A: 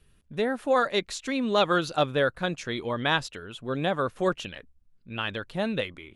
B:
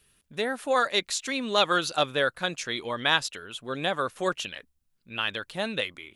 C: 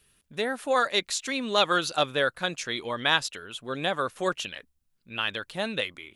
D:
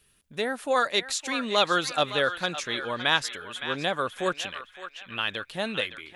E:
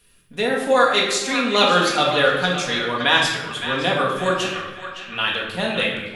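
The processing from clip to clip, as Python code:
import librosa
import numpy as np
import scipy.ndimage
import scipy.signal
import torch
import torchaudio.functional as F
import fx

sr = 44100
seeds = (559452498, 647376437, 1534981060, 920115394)

y1 = fx.tilt_eq(x, sr, slope=2.5)
y2 = y1
y3 = fx.echo_banded(y2, sr, ms=564, feedback_pct=46, hz=2000.0, wet_db=-8.5)
y4 = fx.room_shoebox(y3, sr, seeds[0], volume_m3=510.0, walls='mixed', distance_m=1.8)
y4 = F.gain(torch.from_numpy(y4), 3.5).numpy()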